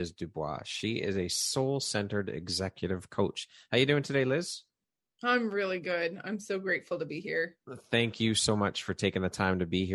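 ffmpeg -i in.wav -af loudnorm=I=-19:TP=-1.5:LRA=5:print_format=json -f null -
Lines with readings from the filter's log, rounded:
"input_i" : "-31.0",
"input_tp" : "-10.8",
"input_lra" : "1.8",
"input_thresh" : "-41.2",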